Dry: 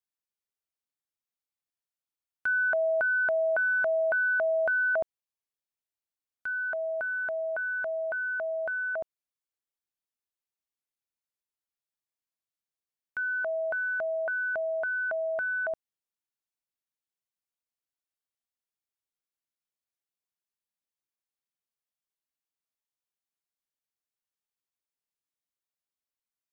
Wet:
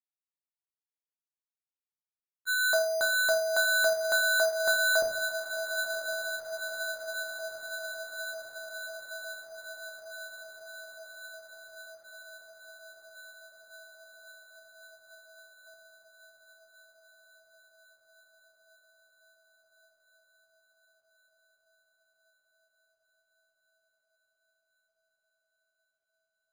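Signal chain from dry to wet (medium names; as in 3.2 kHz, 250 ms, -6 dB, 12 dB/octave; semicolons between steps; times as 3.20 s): de-hum 83.5 Hz, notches 2; gate -25 dBFS, range -42 dB; echo that smears into a reverb 994 ms, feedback 74%, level -9 dB; simulated room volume 72 m³, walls mixed, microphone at 0.65 m; careless resampling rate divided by 8×, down none, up hold; trim +7.5 dB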